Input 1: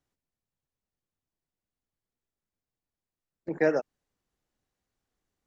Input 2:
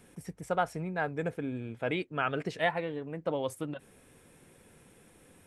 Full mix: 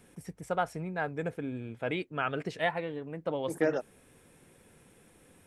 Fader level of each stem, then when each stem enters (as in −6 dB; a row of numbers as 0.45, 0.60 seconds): −4.5, −1.0 decibels; 0.00, 0.00 seconds